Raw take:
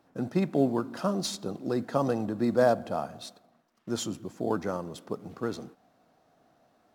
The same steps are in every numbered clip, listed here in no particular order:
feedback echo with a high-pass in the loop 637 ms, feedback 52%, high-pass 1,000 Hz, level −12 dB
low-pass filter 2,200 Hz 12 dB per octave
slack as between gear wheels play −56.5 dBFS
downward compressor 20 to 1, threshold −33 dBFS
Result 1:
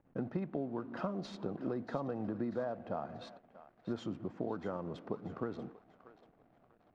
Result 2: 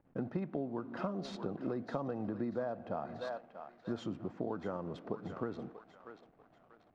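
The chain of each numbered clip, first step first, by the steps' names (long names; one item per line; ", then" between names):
downward compressor, then feedback echo with a high-pass in the loop, then slack as between gear wheels, then low-pass filter
feedback echo with a high-pass in the loop, then slack as between gear wheels, then low-pass filter, then downward compressor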